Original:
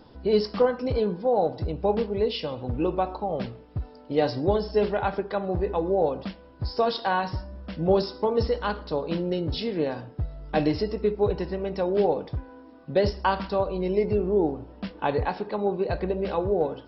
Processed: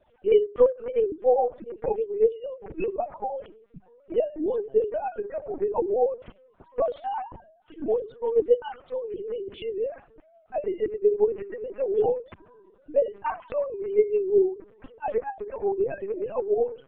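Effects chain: formants replaced by sine waves; peaking EQ 270 Hz +4.5 dB 0.57 oct; de-hum 201.9 Hz, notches 3; word length cut 12-bit, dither none; LPC vocoder at 8 kHz pitch kept; trim -1 dB

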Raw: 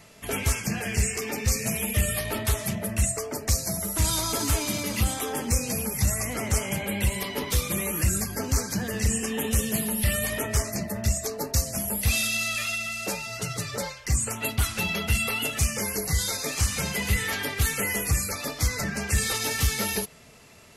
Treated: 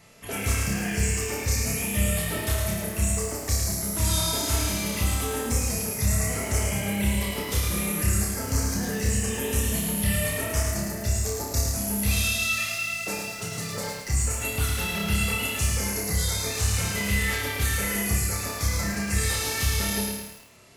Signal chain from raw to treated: flutter echo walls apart 5.1 m, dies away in 0.53 s; bit-crushed delay 108 ms, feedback 55%, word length 7-bit, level -4 dB; trim -4 dB

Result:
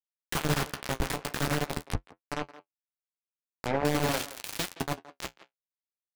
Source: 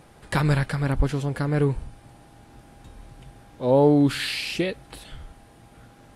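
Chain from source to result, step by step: chunks repeated in reverse 493 ms, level -2 dB; de-hum 46.95 Hz, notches 14; dynamic bell 400 Hz, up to -4 dB, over -34 dBFS, Q 1.8; compression 2:1, threshold -30 dBFS, peak gain reduction 9 dB; bit crusher 4-bit; flange 0.45 Hz, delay 9.2 ms, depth 8.2 ms, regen -42%; 1.81–3.85 s: low-pass that closes with the level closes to 1.6 kHz, closed at -28 dBFS; speakerphone echo 170 ms, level -15 dB; trim +2 dB

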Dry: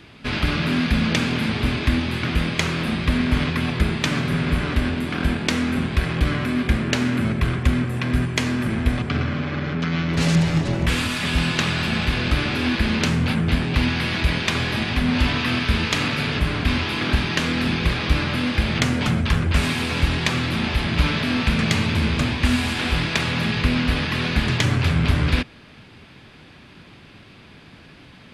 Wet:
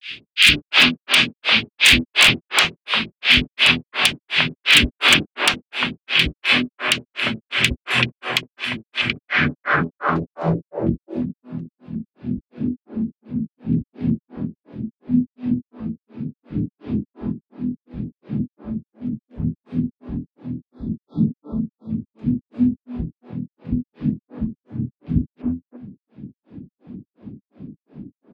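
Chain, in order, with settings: RIAA curve recording; spectral selection erased 20.59–21.90 s, 1.4–3.3 kHz; treble shelf 2.7 kHz +6 dB; de-hum 84.35 Hz, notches 39; level rider gain up to 11 dB; low-pass sweep 2.9 kHz -> 230 Hz, 8.98–11.04 s; granulator 207 ms, grains 2.8 per s, spray 18 ms, pitch spread up and down by 0 st; wavefolder -8.5 dBFS; three bands offset in time highs, lows, mids 60/350 ms, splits 410/1600 Hz; loudness maximiser +11 dB; trim -1 dB

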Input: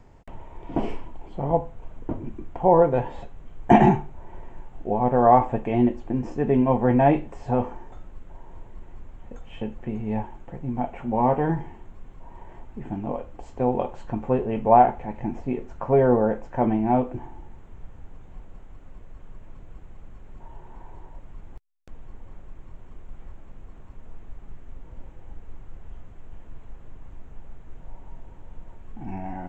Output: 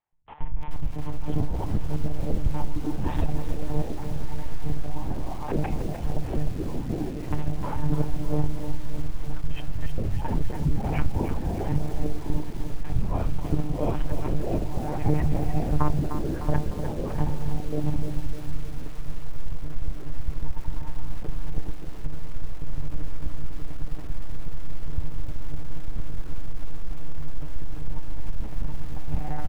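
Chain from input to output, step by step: octave divider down 2 oct, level 0 dB; gate -37 dBFS, range -37 dB; bass shelf 380 Hz +11 dB; compressor with a negative ratio -26 dBFS, ratio -1; three bands offset in time highs, lows, mids 120/670 ms, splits 180/690 Hz; monotone LPC vocoder at 8 kHz 150 Hz; bit-crushed delay 303 ms, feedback 55%, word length 7-bit, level -8.5 dB; trim +2.5 dB

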